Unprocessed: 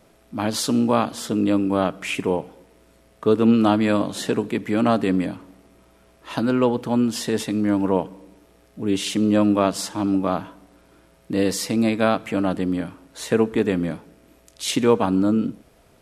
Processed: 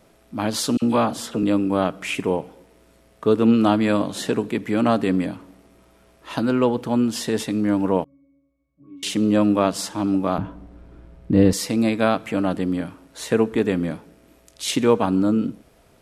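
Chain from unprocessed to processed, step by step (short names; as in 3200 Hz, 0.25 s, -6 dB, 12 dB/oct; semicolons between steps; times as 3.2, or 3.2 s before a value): 0.77–1.43 dispersion lows, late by 52 ms, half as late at 1400 Hz; 8.04–9.03 octave resonator C#, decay 0.75 s; 10.38–11.53 RIAA curve playback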